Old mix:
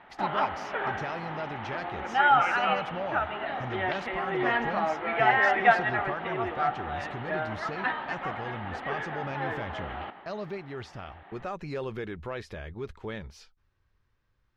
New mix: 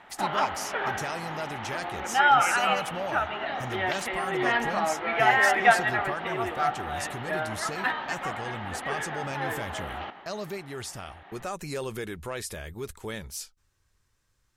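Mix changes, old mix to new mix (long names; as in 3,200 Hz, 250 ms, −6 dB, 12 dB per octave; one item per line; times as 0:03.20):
speech: remove high-frequency loss of the air 260 metres
background: remove high-frequency loss of the air 240 metres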